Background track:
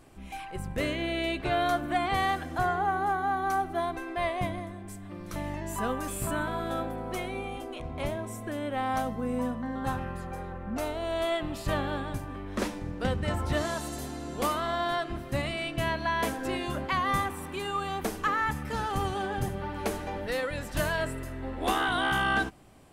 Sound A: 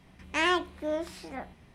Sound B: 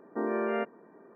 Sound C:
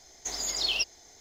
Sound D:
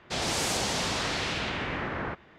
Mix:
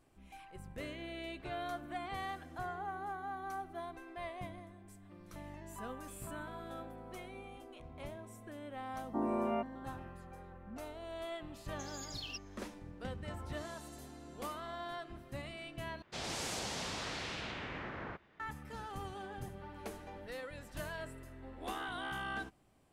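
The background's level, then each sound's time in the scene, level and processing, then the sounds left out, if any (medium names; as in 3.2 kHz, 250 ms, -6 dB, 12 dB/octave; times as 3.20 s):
background track -14 dB
8.98 s: add B -0.5 dB + static phaser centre 450 Hz, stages 6
11.54 s: add C -17 dB
16.02 s: replace with D -11 dB
not used: A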